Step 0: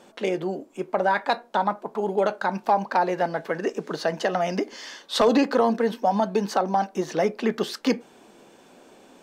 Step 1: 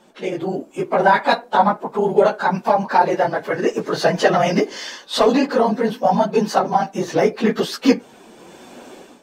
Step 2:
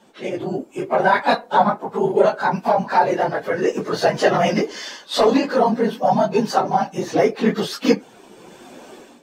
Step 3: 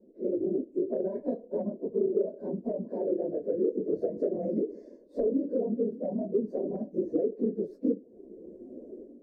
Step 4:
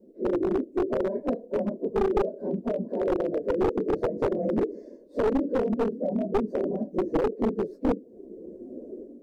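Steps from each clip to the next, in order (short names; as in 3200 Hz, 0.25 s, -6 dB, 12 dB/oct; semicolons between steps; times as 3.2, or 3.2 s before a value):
phase scrambler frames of 50 ms; AGC gain up to 13 dB; gain -1 dB
phase scrambler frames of 50 ms; gain -1 dB
inverse Chebyshev low-pass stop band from 1200 Hz, stop band 40 dB; compressor 6:1, threshold -23 dBFS, peak gain reduction 13 dB; fixed phaser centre 340 Hz, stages 4
one-sided fold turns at -24.5 dBFS; gain +4.5 dB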